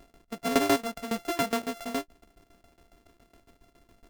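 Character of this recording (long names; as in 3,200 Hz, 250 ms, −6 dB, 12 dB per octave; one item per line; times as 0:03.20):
a buzz of ramps at a fixed pitch in blocks of 64 samples
tremolo saw down 7.2 Hz, depth 90%
AAC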